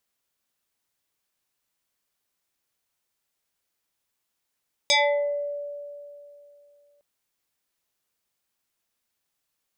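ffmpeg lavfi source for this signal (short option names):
-f lavfi -i "aevalsrc='0.168*pow(10,-3*t/2.81)*sin(2*PI*578*t+4.5*pow(10,-3*t/0.65)*sin(2*PI*2.5*578*t))':d=2.11:s=44100"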